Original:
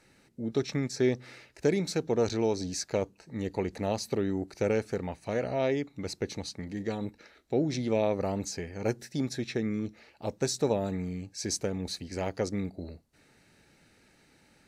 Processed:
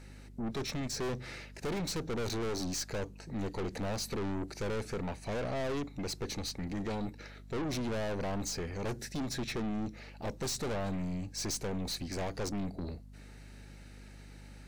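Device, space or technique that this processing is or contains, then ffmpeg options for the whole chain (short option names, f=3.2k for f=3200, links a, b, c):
valve amplifier with mains hum: -af "aeval=exprs='(tanh(79.4*val(0)+0.25)-tanh(0.25))/79.4':c=same,aeval=exprs='val(0)+0.00178*(sin(2*PI*50*n/s)+sin(2*PI*2*50*n/s)/2+sin(2*PI*3*50*n/s)/3+sin(2*PI*4*50*n/s)/4+sin(2*PI*5*50*n/s)/5)':c=same,volume=5dB"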